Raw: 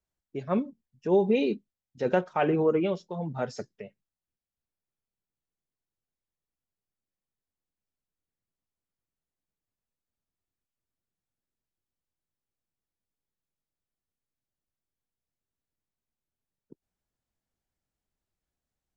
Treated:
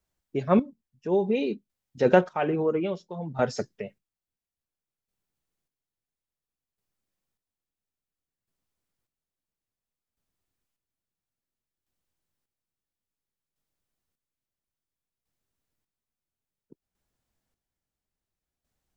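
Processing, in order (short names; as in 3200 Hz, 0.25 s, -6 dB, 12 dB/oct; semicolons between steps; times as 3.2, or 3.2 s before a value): chopper 0.59 Hz, depth 60%, duty 35%; gain +6.5 dB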